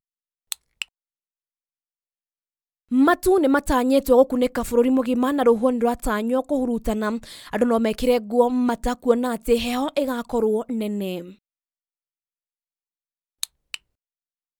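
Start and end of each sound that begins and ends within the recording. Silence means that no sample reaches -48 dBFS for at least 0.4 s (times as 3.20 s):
0.52–0.85 s
2.91–11.35 s
13.43–13.77 s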